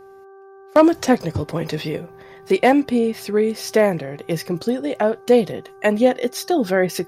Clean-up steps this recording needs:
hum removal 389.4 Hz, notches 4

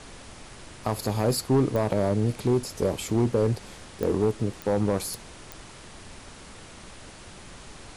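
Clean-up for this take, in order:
clipped peaks rebuilt −16 dBFS
click removal
noise reduction from a noise print 26 dB

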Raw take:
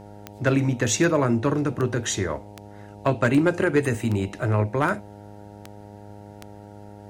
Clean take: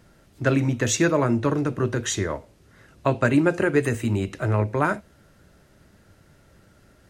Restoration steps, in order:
clipped peaks rebuilt −11 dBFS
click removal
hum removal 102.7 Hz, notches 9

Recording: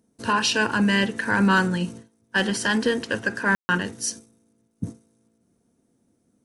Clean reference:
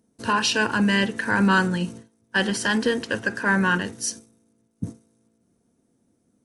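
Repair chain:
clipped peaks rebuilt −11 dBFS
ambience match 0:03.55–0:03.69

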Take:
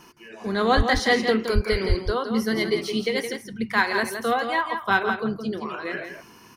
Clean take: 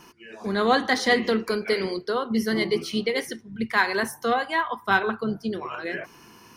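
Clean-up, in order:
0:00.76–0:00.88: high-pass filter 140 Hz 24 dB per octave
0:01.54–0:01.66: high-pass filter 140 Hz 24 dB per octave
0:01.88–0:02.00: high-pass filter 140 Hz 24 dB per octave
echo removal 167 ms −7.5 dB

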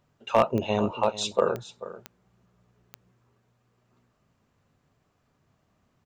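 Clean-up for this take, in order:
clipped peaks rebuilt −10.5 dBFS
click removal
echo removal 439 ms −15.5 dB

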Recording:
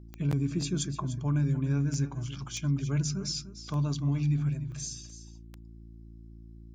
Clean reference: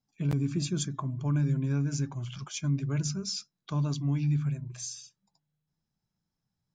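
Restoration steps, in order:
click removal
hum removal 56.2 Hz, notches 6
repair the gap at 0:02.57/0:03.68/0:04.72/0:05.10, 1.2 ms
echo removal 297 ms −13 dB

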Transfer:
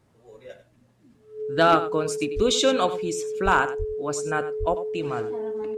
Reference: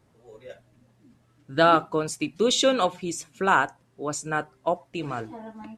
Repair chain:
clipped peaks rebuilt −9 dBFS
notch filter 430 Hz, Q 30
high-pass at the plosives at 0:02.35/0:03.44/0:03.78/0:04.59
echo removal 95 ms −13.5 dB

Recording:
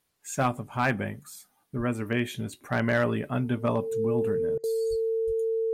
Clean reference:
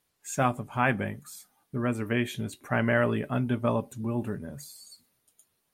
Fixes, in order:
clipped peaks rebuilt −15.5 dBFS
notch filter 450 Hz, Q 30
high-pass at the plosives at 0:01.77/0:04.89/0:05.26
repair the gap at 0:04.58, 55 ms

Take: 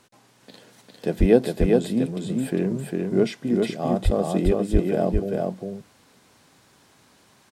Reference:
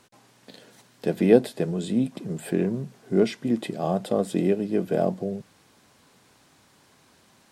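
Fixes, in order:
0:01.19–0:01.31: high-pass filter 140 Hz 24 dB per octave
0:04.04–0:04.16: high-pass filter 140 Hz 24 dB per octave
0:04.72–0:04.84: high-pass filter 140 Hz 24 dB per octave
echo removal 402 ms −3 dB

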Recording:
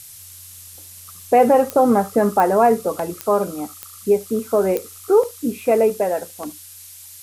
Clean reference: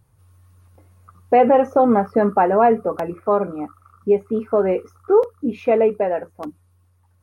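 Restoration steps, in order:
click removal
noise reduction from a noise print 17 dB
echo removal 73 ms −22 dB

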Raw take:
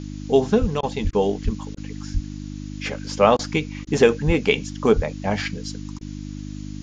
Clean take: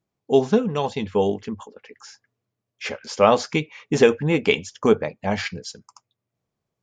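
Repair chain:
hum removal 50.4 Hz, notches 6
high-pass at the plosives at 0:00.60/0:01.03/0:01.44/0:02.13/0:04.26/0:04.95
repair the gap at 0:00.81/0:01.11/0:01.75/0:03.37/0:03.85/0:05.99, 19 ms
noise reduction from a noise print 30 dB

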